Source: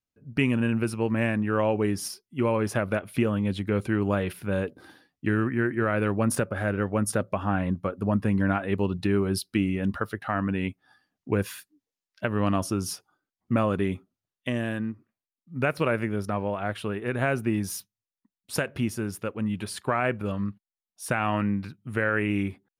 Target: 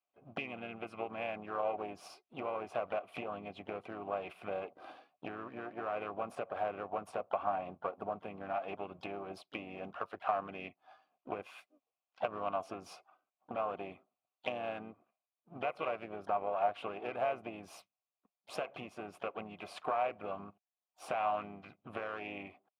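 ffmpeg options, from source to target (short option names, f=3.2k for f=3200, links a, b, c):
-filter_complex "[0:a]aeval=exprs='if(lt(val(0),0),0.447*val(0),val(0))':c=same,acompressor=threshold=-36dB:ratio=10,asplit=3[a][b][c];[a]bandpass=f=730:t=q:w=8,volume=0dB[d];[b]bandpass=f=1.09k:t=q:w=8,volume=-6dB[e];[c]bandpass=f=2.44k:t=q:w=8,volume=-9dB[f];[d][e][f]amix=inputs=3:normalize=0,asplit=3[g][h][i];[h]asetrate=37084,aresample=44100,atempo=1.18921,volume=-10dB[j];[i]asetrate=55563,aresample=44100,atempo=0.793701,volume=-15dB[k];[g][j][k]amix=inputs=3:normalize=0,volume=16dB"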